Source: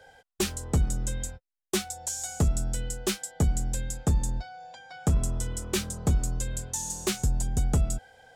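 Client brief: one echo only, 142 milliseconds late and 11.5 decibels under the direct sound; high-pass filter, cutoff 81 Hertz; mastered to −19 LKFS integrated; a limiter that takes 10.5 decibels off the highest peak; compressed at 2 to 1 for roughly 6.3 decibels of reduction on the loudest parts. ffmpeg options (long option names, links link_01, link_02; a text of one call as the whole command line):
ffmpeg -i in.wav -af "highpass=81,acompressor=threshold=-32dB:ratio=2,alimiter=level_in=4dB:limit=-24dB:level=0:latency=1,volume=-4dB,aecho=1:1:142:0.266,volume=19.5dB" out.wav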